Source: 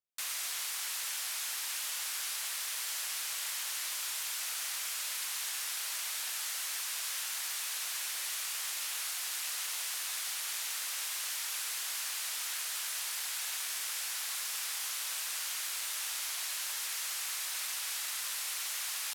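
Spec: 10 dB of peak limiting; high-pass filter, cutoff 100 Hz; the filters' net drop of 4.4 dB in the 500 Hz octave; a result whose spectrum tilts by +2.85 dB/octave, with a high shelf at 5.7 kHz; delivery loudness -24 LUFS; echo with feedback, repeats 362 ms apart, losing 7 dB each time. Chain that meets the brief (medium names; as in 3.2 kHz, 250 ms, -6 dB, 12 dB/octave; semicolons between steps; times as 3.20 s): high-pass 100 Hz; peaking EQ 500 Hz -6 dB; treble shelf 5.7 kHz -5.5 dB; peak limiter -36.5 dBFS; feedback delay 362 ms, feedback 45%, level -7 dB; trim +18 dB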